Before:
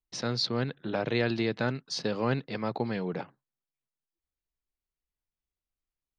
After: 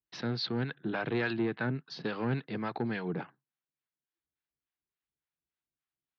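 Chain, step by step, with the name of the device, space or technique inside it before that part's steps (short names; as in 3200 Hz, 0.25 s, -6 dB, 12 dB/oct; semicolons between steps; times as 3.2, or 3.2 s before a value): 1.33–1.8 air absorption 240 m; guitar amplifier with harmonic tremolo (harmonic tremolo 3.5 Hz, depth 70%, crossover 590 Hz; soft clip -25.5 dBFS, distortion -14 dB; speaker cabinet 98–4000 Hz, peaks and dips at 150 Hz +3 dB, 330 Hz +3 dB, 550 Hz -6 dB, 1600 Hz +5 dB); gain +2 dB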